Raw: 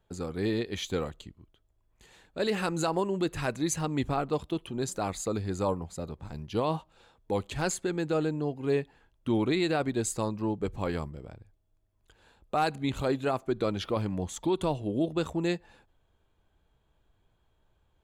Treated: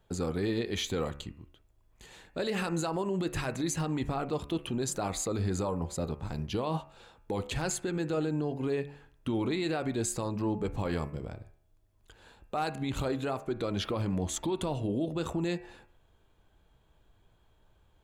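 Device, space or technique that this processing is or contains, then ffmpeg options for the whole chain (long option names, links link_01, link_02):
stacked limiters: -af "alimiter=limit=-22.5dB:level=0:latency=1:release=143,alimiter=level_in=4dB:limit=-24dB:level=0:latency=1:release=45,volume=-4dB,bandreject=frequency=71.5:width_type=h:width=4,bandreject=frequency=143:width_type=h:width=4,bandreject=frequency=214.5:width_type=h:width=4,bandreject=frequency=286:width_type=h:width=4,bandreject=frequency=357.5:width_type=h:width=4,bandreject=frequency=429:width_type=h:width=4,bandreject=frequency=500.5:width_type=h:width=4,bandreject=frequency=572:width_type=h:width=4,bandreject=frequency=643.5:width_type=h:width=4,bandreject=frequency=715:width_type=h:width=4,bandreject=frequency=786.5:width_type=h:width=4,bandreject=frequency=858:width_type=h:width=4,bandreject=frequency=929.5:width_type=h:width=4,bandreject=frequency=1001:width_type=h:width=4,bandreject=frequency=1072.5:width_type=h:width=4,bandreject=frequency=1144:width_type=h:width=4,bandreject=frequency=1215.5:width_type=h:width=4,bandreject=frequency=1287:width_type=h:width=4,bandreject=frequency=1358.5:width_type=h:width=4,bandreject=frequency=1430:width_type=h:width=4,bandreject=frequency=1501.5:width_type=h:width=4,bandreject=frequency=1573:width_type=h:width=4,bandreject=frequency=1644.5:width_type=h:width=4,bandreject=frequency=1716:width_type=h:width=4,bandreject=frequency=1787.5:width_type=h:width=4,bandreject=frequency=1859:width_type=h:width=4,bandreject=frequency=1930.5:width_type=h:width=4,bandreject=frequency=2002:width_type=h:width=4,bandreject=frequency=2073.5:width_type=h:width=4,bandreject=frequency=2145:width_type=h:width=4,bandreject=frequency=2216.5:width_type=h:width=4,bandreject=frequency=2288:width_type=h:width=4,bandreject=frequency=2359.5:width_type=h:width=4,bandreject=frequency=2431:width_type=h:width=4,bandreject=frequency=2502.5:width_type=h:width=4,bandreject=frequency=2574:width_type=h:width=4,bandreject=frequency=2645.5:width_type=h:width=4,bandreject=frequency=2717:width_type=h:width=4,bandreject=frequency=2788.5:width_type=h:width=4,volume=5dB"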